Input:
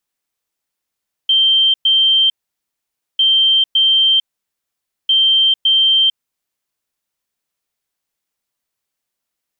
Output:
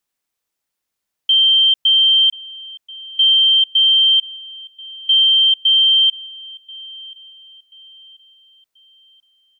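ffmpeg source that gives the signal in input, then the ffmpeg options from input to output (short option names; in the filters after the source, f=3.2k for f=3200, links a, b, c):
-f lavfi -i "aevalsrc='0.355*sin(2*PI*3140*t)*clip(min(mod(mod(t,1.9),0.56),0.45-mod(mod(t,1.9),0.56))/0.005,0,1)*lt(mod(t,1.9),1.12)':d=5.7:s=44100"
-filter_complex "[0:a]asplit=2[a][b];[b]adelay=1034,lowpass=f=3k:p=1,volume=-18.5dB,asplit=2[c][d];[d]adelay=1034,lowpass=f=3k:p=1,volume=0.53,asplit=2[e][f];[f]adelay=1034,lowpass=f=3k:p=1,volume=0.53,asplit=2[g][h];[h]adelay=1034,lowpass=f=3k:p=1,volume=0.53[i];[a][c][e][g][i]amix=inputs=5:normalize=0"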